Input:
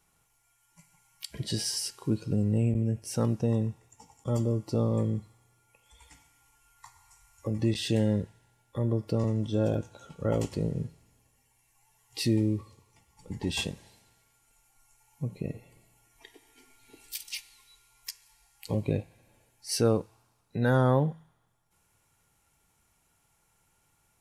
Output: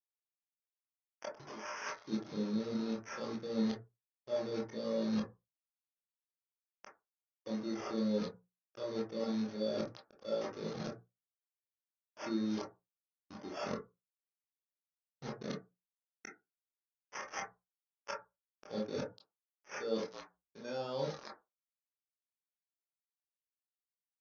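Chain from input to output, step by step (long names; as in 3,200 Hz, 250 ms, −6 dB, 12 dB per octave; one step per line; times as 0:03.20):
high-pass filter 120 Hz 12 dB per octave
high-shelf EQ 5,000 Hz +9.5 dB
decimation without filtering 11×
echo with shifted repeats 289 ms, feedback 41%, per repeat −51 Hz, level −21 dB
bit reduction 6 bits
bass and treble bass −11 dB, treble +11 dB
mains-hum notches 60/120/180 Hz
reversed playback
downward compressor 16 to 1, threshold −41 dBFS, peak gain reduction 25 dB
reversed playback
Butterworth low-pass 6,300 Hz 96 dB per octave
convolution reverb RT60 0.30 s, pre-delay 17 ms, DRR −1.5 dB
every bin expanded away from the loudest bin 1.5 to 1
level +5 dB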